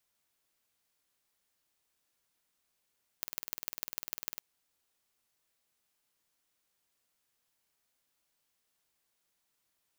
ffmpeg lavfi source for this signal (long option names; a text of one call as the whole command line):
ffmpeg -f lavfi -i "aevalsrc='0.473*eq(mod(n,2205),0)*(0.5+0.5*eq(mod(n,6615),0))':duration=1.17:sample_rate=44100" out.wav